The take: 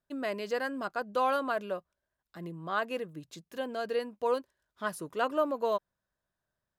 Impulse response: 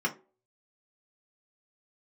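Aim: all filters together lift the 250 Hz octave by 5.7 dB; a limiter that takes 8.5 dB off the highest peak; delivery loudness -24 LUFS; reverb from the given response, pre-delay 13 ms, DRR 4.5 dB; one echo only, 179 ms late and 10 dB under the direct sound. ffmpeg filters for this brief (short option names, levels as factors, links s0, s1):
-filter_complex "[0:a]equalizer=f=250:t=o:g=6.5,alimiter=limit=0.0668:level=0:latency=1,aecho=1:1:179:0.316,asplit=2[s0][s1];[1:a]atrim=start_sample=2205,adelay=13[s2];[s1][s2]afir=irnorm=-1:irlink=0,volume=0.224[s3];[s0][s3]amix=inputs=2:normalize=0,volume=2.66"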